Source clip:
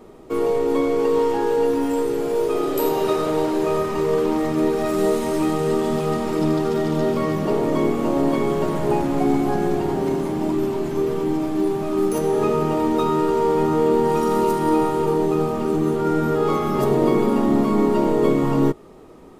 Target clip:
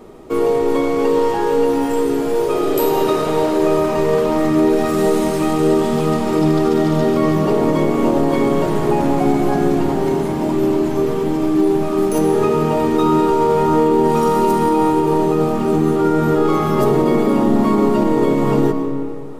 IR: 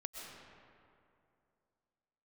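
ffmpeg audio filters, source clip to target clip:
-filter_complex "[0:a]asplit=2[a][b];[1:a]atrim=start_sample=2205[c];[b][c]afir=irnorm=-1:irlink=0,volume=0dB[d];[a][d]amix=inputs=2:normalize=0,alimiter=level_in=5.5dB:limit=-1dB:release=50:level=0:latency=1,volume=-5dB"

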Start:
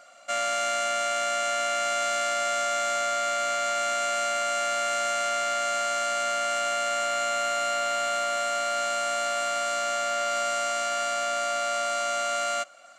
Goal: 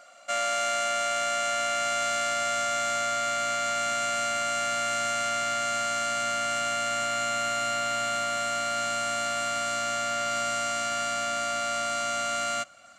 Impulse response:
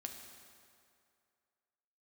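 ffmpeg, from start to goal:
-af "asubboost=boost=7:cutoff=180"

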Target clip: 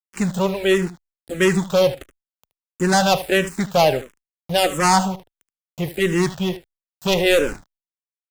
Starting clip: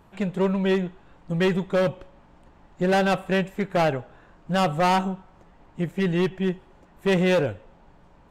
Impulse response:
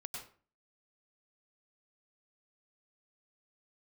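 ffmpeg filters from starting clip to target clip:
-filter_complex "[0:a]bass=f=250:g=-3,treble=f=4k:g=15,aeval=exprs='val(0)+0.00224*(sin(2*PI*50*n/s)+sin(2*PI*2*50*n/s)/2+sin(2*PI*3*50*n/s)/3+sin(2*PI*4*50*n/s)/4+sin(2*PI*5*50*n/s)/5)':c=same,asplit=2[a][b];[b]asoftclip=type=tanh:threshold=-27dB,volume=-3dB[c];[a][c]amix=inputs=2:normalize=0,asplit=3[d][e][f];[d]afade=t=out:st=7.1:d=0.02[g];[e]asubboost=boost=5:cutoff=59,afade=t=in:st=7.1:d=0.02,afade=t=out:st=7.52:d=0.02[h];[f]afade=t=in:st=7.52:d=0.02[i];[g][h][i]amix=inputs=3:normalize=0,aeval=exprs='val(0)*gte(abs(val(0)),0.0211)':c=same,asplit=2[j][k];[k]aecho=0:1:75:0.178[l];[j][l]amix=inputs=2:normalize=0,asplit=2[m][n];[n]afreqshift=-1.5[o];[m][o]amix=inputs=2:normalize=1,volume=5dB"

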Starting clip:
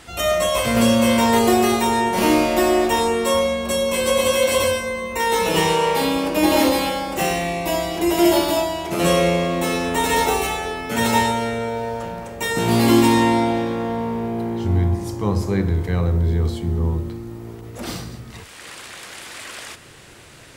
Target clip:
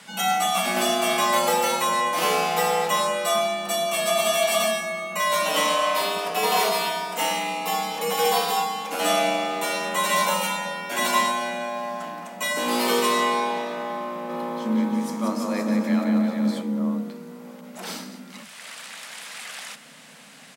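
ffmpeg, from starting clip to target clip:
-filter_complex "[0:a]equalizer=f=230:w=1.1:g=-13.5,afreqshift=130,asplit=3[a][b][c];[a]afade=t=out:st=14.28:d=0.02[d];[b]aecho=1:1:180|324|439.2|531.4|605.1:0.631|0.398|0.251|0.158|0.1,afade=t=in:st=14.28:d=0.02,afade=t=out:st=16.61:d=0.02[e];[c]afade=t=in:st=16.61:d=0.02[f];[d][e][f]amix=inputs=3:normalize=0,volume=-1.5dB"

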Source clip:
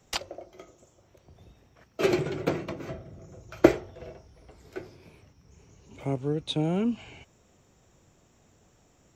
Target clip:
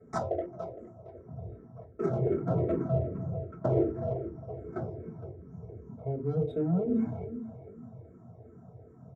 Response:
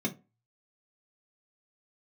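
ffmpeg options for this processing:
-filter_complex "[1:a]atrim=start_sample=2205,asetrate=26460,aresample=44100[a];[0:a][a]afir=irnorm=-1:irlink=0,volume=0.5dB,asoftclip=hard,volume=-0.5dB,areverse,acompressor=threshold=-20dB:ratio=20,areverse,firequalizer=gain_entry='entry(100,0);entry(540,13);entry(1200,2);entry(1800,-3);entry(2900,-24);entry(5700,-3)':delay=0.05:min_phase=1,adynamicsmooth=sensitivity=3:basefreq=2.7k,equalizer=f=9.5k:w=0.85:g=4.5,asplit=2[b][c];[c]adelay=462,lowpass=f=3.1k:p=1,volume=-14dB,asplit=2[d][e];[e]adelay=462,lowpass=f=3.1k:p=1,volume=0.32,asplit=2[f][g];[g]adelay=462,lowpass=f=3.1k:p=1,volume=0.32[h];[b][d][f][h]amix=inputs=4:normalize=0,asplit=2[i][j];[j]afreqshift=-2.6[k];[i][k]amix=inputs=2:normalize=1,volume=-5.5dB"

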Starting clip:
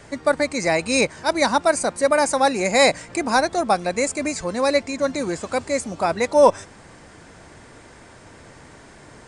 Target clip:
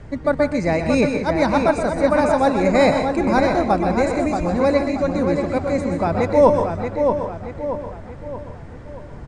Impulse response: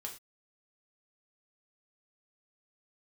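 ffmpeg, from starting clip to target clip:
-filter_complex "[0:a]aemphasis=mode=reproduction:type=riaa,asplit=2[a][b];[b]adelay=629,lowpass=f=3.9k:p=1,volume=-5.5dB,asplit=2[c][d];[d]adelay=629,lowpass=f=3.9k:p=1,volume=0.46,asplit=2[e][f];[f]adelay=629,lowpass=f=3.9k:p=1,volume=0.46,asplit=2[g][h];[h]adelay=629,lowpass=f=3.9k:p=1,volume=0.46,asplit=2[i][j];[j]adelay=629,lowpass=f=3.9k:p=1,volume=0.46,asplit=2[k][l];[l]adelay=629,lowpass=f=3.9k:p=1,volume=0.46[m];[a][c][e][g][i][k][m]amix=inputs=7:normalize=0,asplit=2[n][o];[1:a]atrim=start_sample=2205,adelay=124[p];[o][p]afir=irnorm=-1:irlink=0,volume=-3.5dB[q];[n][q]amix=inputs=2:normalize=0,volume=-2dB"

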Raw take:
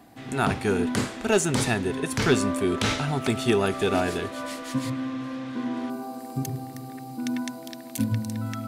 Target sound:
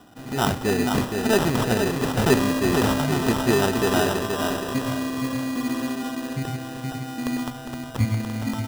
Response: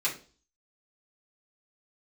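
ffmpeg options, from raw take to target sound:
-filter_complex "[0:a]aecho=1:1:470|940|1410|1880:0.562|0.202|0.0729|0.0262,asplit=3[a][b][c];[a]afade=t=out:st=7.49:d=0.02[d];[b]asubboost=boost=10.5:cutoff=81,afade=t=in:st=7.49:d=0.02,afade=t=out:st=8.04:d=0.02[e];[c]afade=t=in:st=8.04:d=0.02[f];[d][e][f]amix=inputs=3:normalize=0,acrusher=samples=20:mix=1:aa=0.000001,volume=1.5dB"

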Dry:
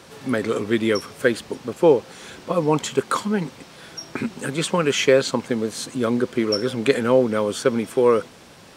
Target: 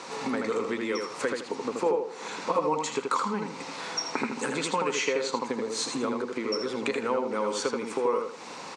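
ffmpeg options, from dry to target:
-filter_complex "[0:a]asettb=1/sr,asplit=3[a][b][c];[a]atrim=end=1.864[d];[b]atrim=start=1.86:end=2.28,asetpts=PTS-STARTPTS,afade=t=in:d=0.004:c=qsin,afade=t=out:st=0.416:d=0.004:c=qsin,equalizer=f=450:w=0.39:g=7[e];[c]atrim=start=2.276[f];[d][e]acrossfade=d=0.004:c1=hsin:c2=qsin[g];[g][f]acrossfade=d=0.004:c1=qsin:c2=hsin,acompressor=threshold=-31dB:ratio=6,highpass=340,equalizer=f=360:t=q:w=4:g=-6,equalizer=f=620:t=q:w=4:g=-8,equalizer=f=950:t=q:w=4:g=5,equalizer=f=1.6k:t=q:w=4:g=-7,equalizer=f=3.2k:t=q:w=4:g=-9,equalizer=f=5.2k:t=q:w=4:g=-3,lowpass=f=7.4k:w=0.5412,lowpass=f=7.4k:w=1.3066,asplit=2[h][i];[i]adelay=80,lowpass=f=3.9k:p=1,volume=-3.5dB,asplit=2[j][k];[k]adelay=80,lowpass=f=3.9k:p=1,volume=0.32,asplit=2[l][m];[m]adelay=80,lowpass=f=3.9k:p=1,volume=0.32,asplit=2[n][o];[o]adelay=80,lowpass=f=3.9k:p=1,volume=0.32[p];[h][j][l][n][p]amix=inputs=5:normalize=0,volume=8.5dB"

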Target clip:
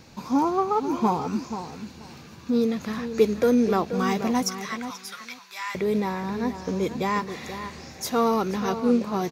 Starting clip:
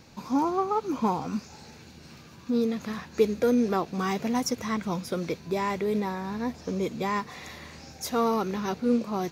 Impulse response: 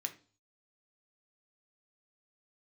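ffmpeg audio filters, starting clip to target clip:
-filter_complex "[0:a]asettb=1/sr,asplit=3[a][b][c];[a]atrim=end=4.434[d];[b]atrim=start=4.43:end=5.75,asetpts=PTS-STARTPTS,afade=t=in:d=0.004:c=qsin,afade=t=out:st=1.316:d=0.004:c=qsin,highpass=f=1.2k:w=0.5412,highpass=f=1.2k:w=1.3066[e];[c]atrim=start=5.746[f];[d][e]acrossfade=d=0.004:c1=hsin:c2=qsin[g];[g][f]acrossfade=d=0.004:c1=qsin:c2=hsin,asplit=2[h][i];[i]adelay=482,lowpass=f=2.9k:p=1,volume=-10dB,asplit=2[j][k];[k]adelay=482,lowpass=f=2.9k:p=1,volume=0.18,asplit=2[l][m];[m]adelay=482,lowpass=f=2.9k:p=1,volume=0.18[n];[h][j][l][n]amix=inputs=4:normalize=0,volume=3dB"

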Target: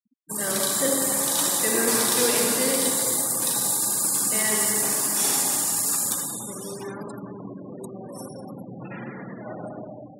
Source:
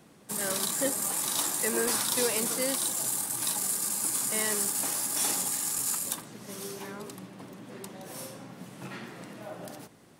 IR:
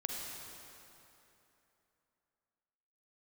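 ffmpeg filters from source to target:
-filter_complex "[1:a]atrim=start_sample=2205[a];[0:a][a]afir=irnorm=-1:irlink=0,afftfilt=real='re*gte(hypot(re,im),0.0126)':imag='im*gte(hypot(re,im),0.0126)':win_size=1024:overlap=0.75,volume=5dB"

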